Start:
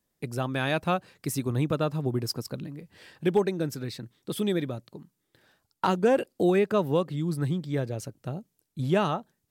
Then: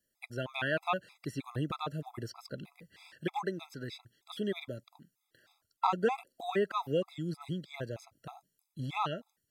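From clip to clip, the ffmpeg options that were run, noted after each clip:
-filter_complex "[0:a]tiltshelf=f=630:g=-5,acrossover=split=4400[a][b];[b]acompressor=threshold=-54dB:ratio=4:attack=1:release=60[c];[a][c]amix=inputs=2:normalize=0,afftfilt=real='re*gt(sin(2*PI*3.2*pts/sr)*(1-2*mod(floor(b*sr/1024/670),2)),0)':imag='im*gt(sin(2*PI*3.2*pts/sr)*(1-2*mod(floor(b*sr/1024/670),2)),0)':win_size=1024:overlap=0.75,volume=-3.5dB"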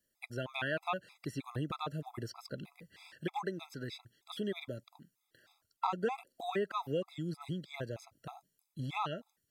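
-af "acompressor=threshold=-37dB:ratio=1.5"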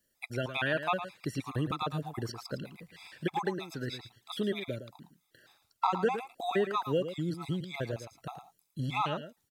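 -af "aecho=1:1:111:0.299,volume=5dB"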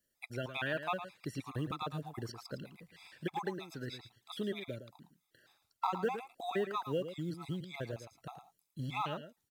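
-af "acrusher=bits=9:mode=log:mix=0:aa=0.000001,volume=-5.5dB"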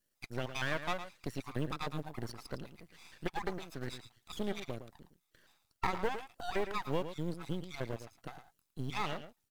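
-af "aeval=exprs='max(val(0),0)':c=same,volume=4dB"

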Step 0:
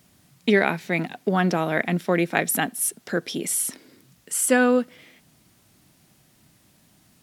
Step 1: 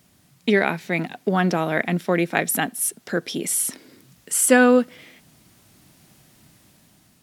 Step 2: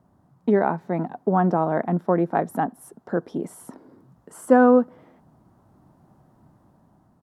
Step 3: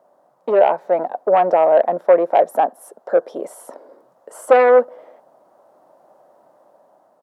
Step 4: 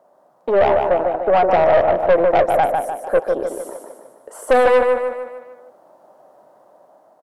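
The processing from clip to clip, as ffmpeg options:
-af "dynaudnorm=f=440:g=5:m=5.5dB"
-af "firequalizer=gain_entry='entry(500,0);entry(910,5);entry(2300,-24)':delay=0.05:min_phase=1"
-af "aeval=exprs='0.668*sin(PI/2*2.51*val(0)/0.668)':c=same,highpass=f=560:t=q:w=4.7,volume=-8.5dB"
-filter_complex "[0:a]asplit=2[a][b];[b]aecho=0:1:150|300|450|600|750|900:0.562|0.27|0.13|0.0622|0.0299|0.0143[c];[a][c]amix=inputs=2:normalize=0,aeval=exprs='(tanh(3.16*val(0)+0.3)-tanh(0.3))/3.16':c=same,volume=2dB"

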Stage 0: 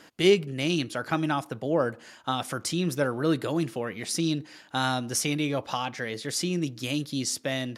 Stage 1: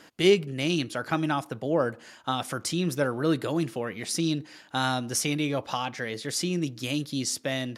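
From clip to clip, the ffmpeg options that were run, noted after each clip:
-af anull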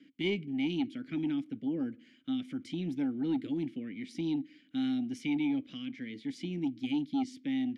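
-filter_complex "[0:a]asplit=3[a][b][c];[a]bandpass=f=270:t=q:w=8,volume=0dB[d];[b]bandpass=f=2.29k:t=q:w=8,volume=-6dB[e];[c]bandpass=f=3.01k:t=q:w=8,volume=-9dB[f];[d][e][f]amix=inputs=3:normalize=0,acrossover=split=280|1700|3100[g][h][i][j];[g]aeval=exprs='0.0316*sin(PI/2*2*val(0)/0.0316)':c=same[k];[k][h][i][j]amix=inputs=4:normalize=0"

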